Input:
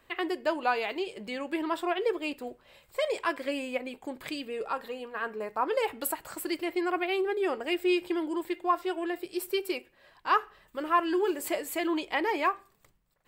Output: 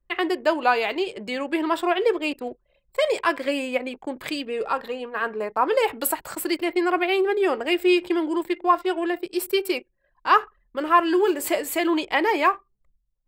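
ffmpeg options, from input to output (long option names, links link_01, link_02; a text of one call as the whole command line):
ffmpeg -i in.wav -filter_complex "[0:a]anlmdn=0.01,acrossover=split=180[link_01][link_02];[link_01]alimiter=level_in=31dB:limit=-24dB:level=0:latency=1,volume=-31dB[link_03];[link_03][link_02]amix=inputs=2:normalize=0,volume=7.5dB" out.wav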